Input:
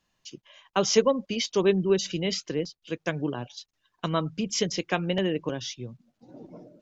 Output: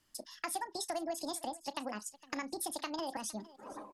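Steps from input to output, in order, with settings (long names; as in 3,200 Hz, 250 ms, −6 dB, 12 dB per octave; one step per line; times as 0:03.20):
parametric band 260 Hz −11 dB 0.4 octaves
downward compressor 6 to 1, threshold −37 dBFS, peak gain reduction 19.5 dB
multi-tap delay 57/799 ms −17/−19.5 dB
wrong playback speed 45 rpm record played at 78 rpm
level +1 dB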